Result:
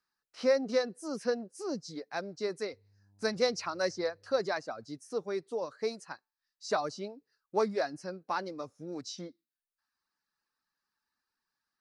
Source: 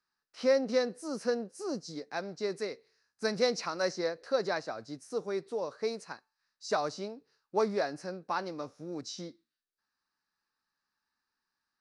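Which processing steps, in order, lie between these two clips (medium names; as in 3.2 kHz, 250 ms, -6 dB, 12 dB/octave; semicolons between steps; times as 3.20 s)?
2.72–4.41 s: mains buzz 100 Hz, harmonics 10, -63 dBFS -9 dB/octave; reverb removal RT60 0.62 s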